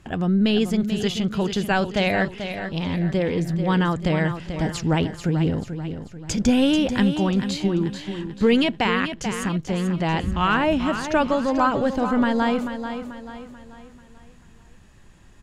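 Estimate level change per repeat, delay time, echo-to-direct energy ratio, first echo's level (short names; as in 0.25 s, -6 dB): -7.5 dB, 0.438 s, -8.0 dB, -9.0 dB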